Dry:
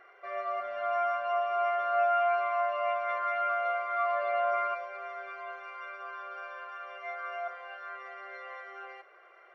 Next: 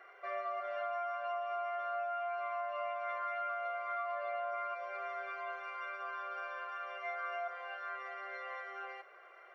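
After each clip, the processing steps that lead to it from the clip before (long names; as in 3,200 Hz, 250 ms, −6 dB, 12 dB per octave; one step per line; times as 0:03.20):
high-pass filter 340 Hz 12 dB per octave
downward compressor 12 to 1, threshold −35 dBFS, peak gain reduction 12 dB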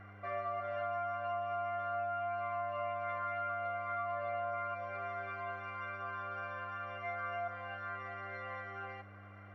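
high-shelf EQ 3,600 Hz −8 dB
hum with harmonics 100 Hz, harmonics 3, −56 dBFS −8 dB per octave
level +1 dB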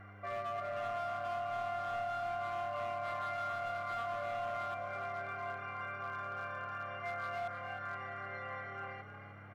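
hard clipping −34.5 dBFS, distortion −17 dB
echo with shifted repeats 309 ms, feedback 37%, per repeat +37 Hz, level −10 dB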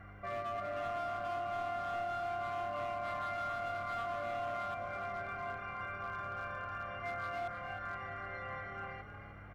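sub-octave generator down 1 octave, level −4 dB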